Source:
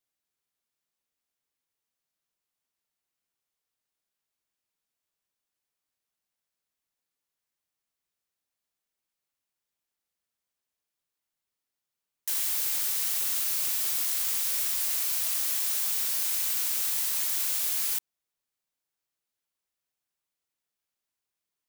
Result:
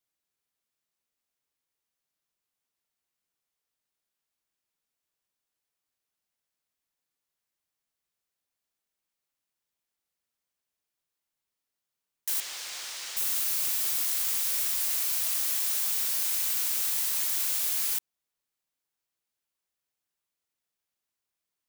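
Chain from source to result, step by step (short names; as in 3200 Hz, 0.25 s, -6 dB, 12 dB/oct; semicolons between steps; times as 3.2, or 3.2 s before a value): 12.4–13.17 three-band isolator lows -13 dB, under 370 Hz, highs -20 dB, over 7000 Hz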